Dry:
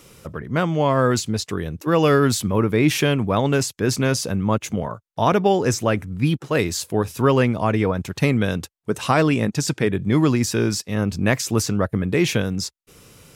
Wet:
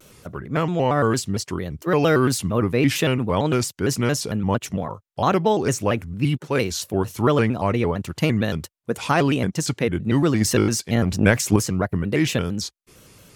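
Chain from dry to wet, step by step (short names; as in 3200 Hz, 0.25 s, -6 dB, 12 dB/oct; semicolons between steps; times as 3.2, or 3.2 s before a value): 10.35–11.56 transient shaper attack +10 dB, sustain +6 dB; shaped vibrato square 4.4 Hz, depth 160 cents; gain -1.5 dB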